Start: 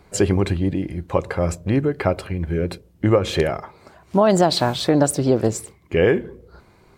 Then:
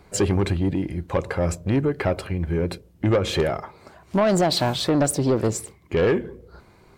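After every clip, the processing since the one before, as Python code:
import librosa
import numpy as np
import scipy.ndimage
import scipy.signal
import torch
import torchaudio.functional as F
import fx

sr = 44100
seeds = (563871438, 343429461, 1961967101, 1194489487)

y = 10.0 ** (-13.5 / 20.0) * np.tanh(x / 10.0 ** (-13.5 / 20.0))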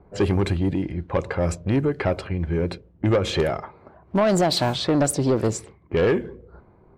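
y = fx.env_lowpass(x, sr, base_hz=840.0, full_db=-17.5)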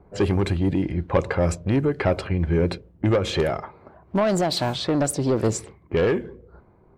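y = fx.rider(x, sr, range_db=4, speed_s=0.5)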